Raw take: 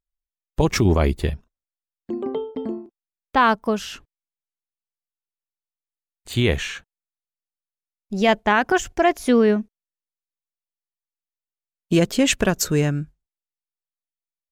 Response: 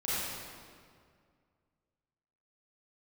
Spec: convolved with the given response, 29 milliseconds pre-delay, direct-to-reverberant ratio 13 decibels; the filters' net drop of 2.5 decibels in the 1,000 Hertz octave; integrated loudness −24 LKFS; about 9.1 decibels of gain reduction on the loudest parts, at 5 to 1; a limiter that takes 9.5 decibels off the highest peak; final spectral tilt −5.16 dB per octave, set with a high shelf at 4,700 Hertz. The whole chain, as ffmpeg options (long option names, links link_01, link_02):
-filter_complex "[0:a]equalizer=frequency=1000:width_type=o:gain=-3,highshelf=frequency=4700:gain=-6,acompressor=threshold=-23dB:ratio=5,alimiter=limit=-21dB:level=0:latency=1,asplit=2[link_01][link_02];[1:a]atrim=start_sample=2205,adelay=29[link_03];[link_02][link_03]afir=irnorm=-1:irlink=0,volume=-20.5dB[link_04];[link_01][link_04]amix=inputs=2:normalize=0,volume=8.5dB"